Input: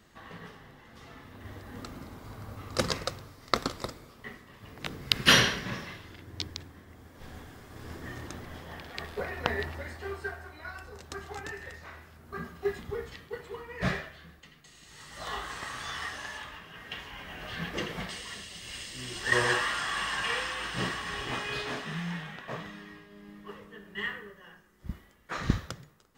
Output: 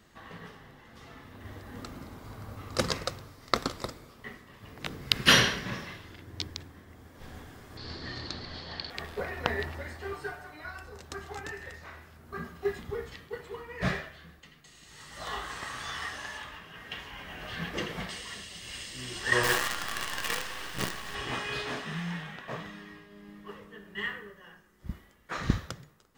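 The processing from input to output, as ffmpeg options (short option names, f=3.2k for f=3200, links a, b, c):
-filter_complex "[0:a]asettb=1/sr,asplit=3[a][b][c];[a]atrim=end=7.774[d];[b]atrim=start=7.77:end=8.9,asetpts=PTS-STARTPTS,afade=t=in:d=0.004:c=qsin,afade=t=out:st=1.126:d=0.004:c=qsin,lowpass=f=4.4k:t=q:w=16[e];[c]atrim=start=8.896[f];[d][e]acrossfade=d=0.004:c1=hsin:c2=qsin[g];[g][f]acrossfade=d=0.004:c1=qsin:c2=hsin,asettb=1/sr,asplit=3[h][i][j];[h]atrim=end=10.124[k];[i]atrim=start=10.12:end=10.65,asetpts=PTS-STARTPTS,afade=t=in:d=0.004:c=qsin,afade=t=out:st=0.526:d=0.004:c=qsin,aecho=1:1:6.7:0.65,atrim=end_sample=23373[l];[j]atrim=start=10.646[m];[k][l]acrossfade=d=0.004:c1=hsin:c2=qsin[n];[n][m]acrossfade=d=0.004:c1=qsin:c2=hsin,asettb=1/sr,asplit=3[o][p][q];[o]atrim=end=19.434[r];[p]atrim=start=19.43:end=21.15,asetpts=PTS-STARTPTS,afade=t=in:d=0.004:c=qsin,afade=t=out:st=1.716:d=0.004:c=qsin,acrusher=bits=5:dc=4:mix=0:aa=0.000001[s];[q]atrim=start=21.146[t];[r][s]acrossfade=d=0.004:c1=hsin:c2=qsin[u];[u][t]acrossfade=d=0.004:c1=qsin:c2=hsin"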